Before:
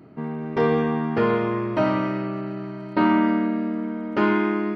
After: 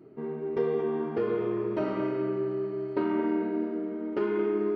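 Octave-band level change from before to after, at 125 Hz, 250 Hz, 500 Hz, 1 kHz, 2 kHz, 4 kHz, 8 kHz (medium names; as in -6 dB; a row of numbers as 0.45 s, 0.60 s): -11.5 dB, -8.0 dB, -2.5 dB, -12.5 dB, -14.0 dB, under -10 dB, no reading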